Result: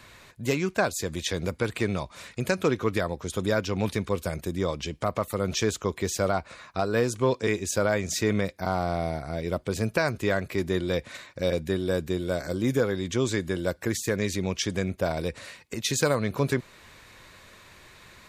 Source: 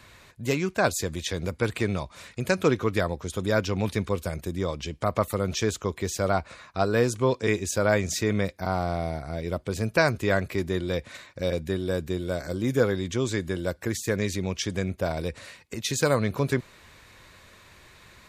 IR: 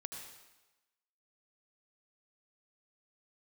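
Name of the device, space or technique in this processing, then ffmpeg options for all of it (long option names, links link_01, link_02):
limiter into clipper: -af "alimiter=limit=-13.5dB:level=0:latency=1:release=330,asoftclip=type=hard:threshold=-14.5dB,equalizer=frequency=71:width=1:gain=-3.5,volume=1.5dB"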